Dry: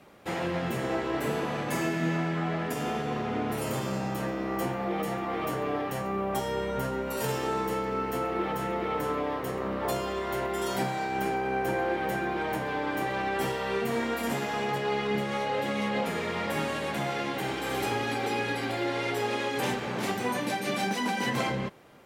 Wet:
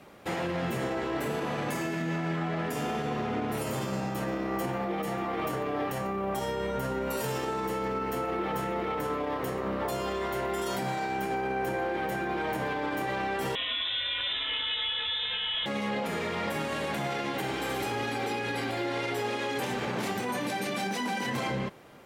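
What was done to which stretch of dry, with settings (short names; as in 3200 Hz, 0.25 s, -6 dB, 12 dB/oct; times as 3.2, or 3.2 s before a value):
13.55–15.66 inverted band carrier 3800 Hz
whole clip: limiter -25.5 dBFS; gain +2.5 dB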